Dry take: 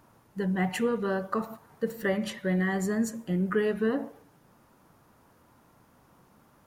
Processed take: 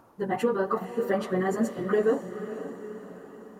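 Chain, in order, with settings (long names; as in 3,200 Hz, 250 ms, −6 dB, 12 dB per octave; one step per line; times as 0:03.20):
flat-topped bell 580 Hz +8 dB 2.7 octaves
feedback delay with all-pass diffusion 972 ms, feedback 50%, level −11 dB
time stretch by phase vocoder 0.54×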